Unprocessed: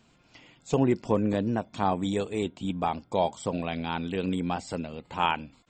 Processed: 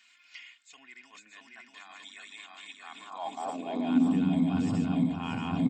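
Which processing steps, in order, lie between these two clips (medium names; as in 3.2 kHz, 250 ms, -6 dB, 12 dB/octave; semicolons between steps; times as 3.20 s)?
backward echo that repeats 315 ms, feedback 75%, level -3 dB; comb 2.8 ms, depth 49%; reverse; compression 12:1, threshold -35 dBFS, peak gain reduction 19.5 dB; reverse; high-pass sweep 2 kHz -> 130 Hz, 2.77–4.37 s; resonant low shelf 310 Hz +7.5 dB, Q 3; trim +1.5 dB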